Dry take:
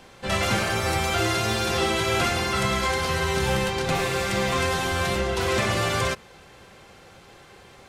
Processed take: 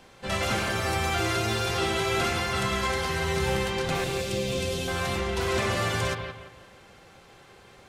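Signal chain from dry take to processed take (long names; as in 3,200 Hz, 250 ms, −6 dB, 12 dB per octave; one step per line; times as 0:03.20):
0:04.04–0:04.88: flat-topped bell 1,200 Hz −13.5 dB
on a send: bucket-brigade delay 171 ms, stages 4,096, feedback 34%, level −7 dB
on the sum: level −4 dB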